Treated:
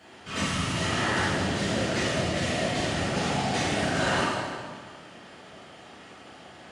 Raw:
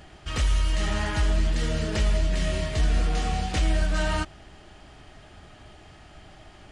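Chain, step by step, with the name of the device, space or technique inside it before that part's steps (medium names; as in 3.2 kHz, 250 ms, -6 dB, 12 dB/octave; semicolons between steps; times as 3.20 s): whispering ghost (whisper effect; high-pass 230 Hz 12 dB/octave; reverberation RT60 1.8 s, pre-delay 3 ms, DRR -8.5 dB); trim -4.5 dB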